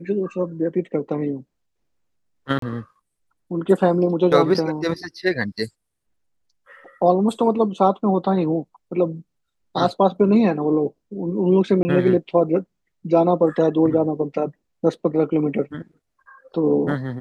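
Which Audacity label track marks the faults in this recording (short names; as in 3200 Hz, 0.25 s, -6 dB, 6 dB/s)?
2.590000	2.620000	gap 33 ms
11.830000	11.850000	gap 20 ms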